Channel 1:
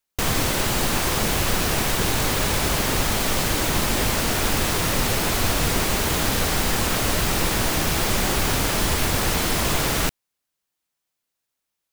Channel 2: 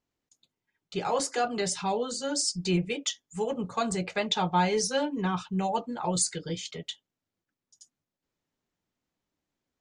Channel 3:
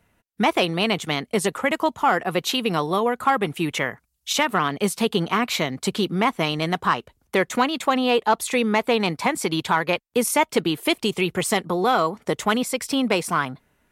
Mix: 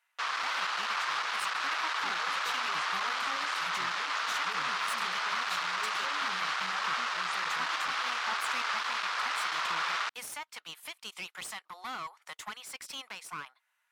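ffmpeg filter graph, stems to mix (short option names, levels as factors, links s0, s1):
-filter_complex "[0:a]lowpass=f=5100:w=0.5412,lowpass=f=5100:w=1.3066,asoftclip=type=tanh:threshold=0.0794,highpass=f=1200:t=q:w=2.7,volume=0.531[s0];[1:a]acompressor=threshold=0.0251:ratio=6,adelay=1100,volume=0.168[s1];[2:a]highpass=f=980:w=0.5412,highpass=f=980:w=1.3066,alimiter=limit=0.112:level=0:latency=1:release=330,aeval=exprs='clip(val(0),-1,0.0168)':c=same,volume=0.447[s2];[s0][s1][s2]amix=inputs=3:normalize=0,highpass=f=200:p=1,highshelf=f=9900:g=-5.5"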